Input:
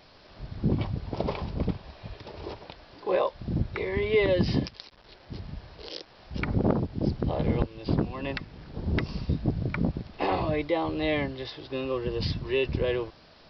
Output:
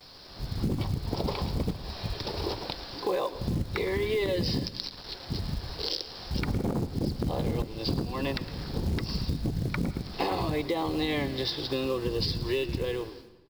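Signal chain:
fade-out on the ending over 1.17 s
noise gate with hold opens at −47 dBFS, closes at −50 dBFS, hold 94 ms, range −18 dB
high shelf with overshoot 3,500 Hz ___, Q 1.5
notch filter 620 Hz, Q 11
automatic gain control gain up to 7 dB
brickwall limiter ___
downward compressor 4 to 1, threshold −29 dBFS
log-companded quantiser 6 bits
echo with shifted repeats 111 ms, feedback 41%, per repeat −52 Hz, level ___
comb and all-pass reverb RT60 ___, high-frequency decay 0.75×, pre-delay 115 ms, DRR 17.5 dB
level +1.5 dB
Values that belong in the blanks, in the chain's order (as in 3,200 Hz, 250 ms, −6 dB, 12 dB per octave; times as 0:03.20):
+7 dB, −11 dBFS, −15 dB, 1.1 s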